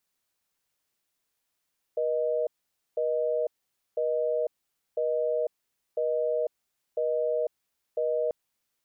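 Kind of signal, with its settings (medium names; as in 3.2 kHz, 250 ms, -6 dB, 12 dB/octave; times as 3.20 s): call progress tone busy tone, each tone -27 dBFS 6.34 s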